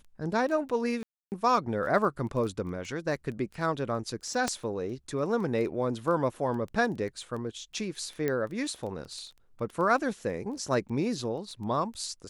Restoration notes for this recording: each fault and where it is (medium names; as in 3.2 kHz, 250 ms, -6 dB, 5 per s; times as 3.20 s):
crackle 10 per s -35 dBFS
1.03–1.32 s: dropout 289 ms
4.48 s: pop -14 dBFS
8.28 s: pop -17 dBFS